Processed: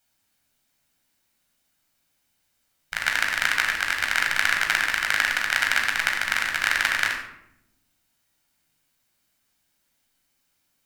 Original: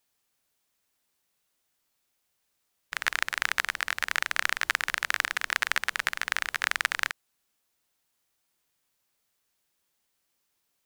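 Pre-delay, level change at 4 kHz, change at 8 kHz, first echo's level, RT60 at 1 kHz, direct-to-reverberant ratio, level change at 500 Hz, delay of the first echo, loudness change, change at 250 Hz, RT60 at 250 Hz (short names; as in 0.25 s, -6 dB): 11 ms, +5.5 dB, +4.5 dB, none, 0.70 s, 0.5 dB, +4.5 dB, none, +5.5 dB, +8.5 dB, 1.4 s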